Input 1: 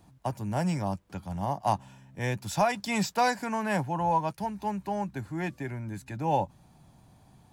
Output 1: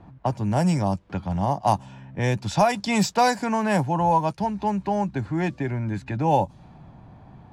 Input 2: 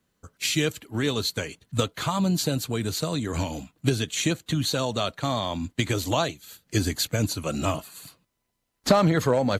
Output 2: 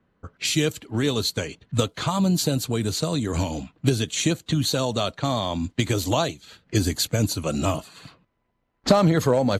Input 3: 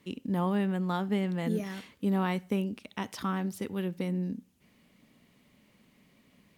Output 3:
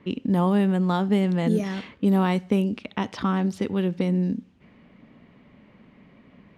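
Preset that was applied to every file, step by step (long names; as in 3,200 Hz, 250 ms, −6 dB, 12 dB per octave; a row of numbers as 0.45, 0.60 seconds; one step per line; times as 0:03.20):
in parallel at −1 dB: downward compressor 4 to 1, threshold −37 dBFS
on the sum: dynamic equaliser 1,800 Hz, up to −4 dB, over −42 dBFS, Q 0.85
low-pass that shuts in the quiet parts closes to 1,800 Hz, open at −21 dBFS
loudness normalisation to −24 LKFS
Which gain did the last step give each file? +5.5, +1.5, +6.0 decibels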